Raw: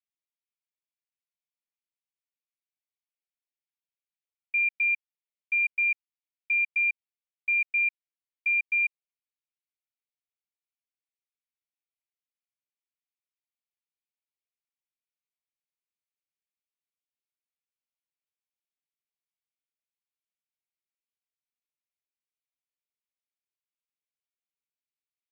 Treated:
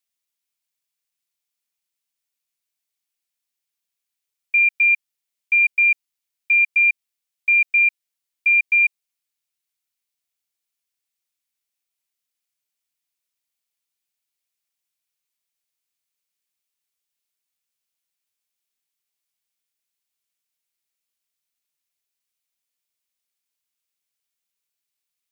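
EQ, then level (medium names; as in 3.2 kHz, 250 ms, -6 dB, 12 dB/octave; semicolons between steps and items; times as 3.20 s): treble shelf 2.1 kHz +11 dB; +3.0 dB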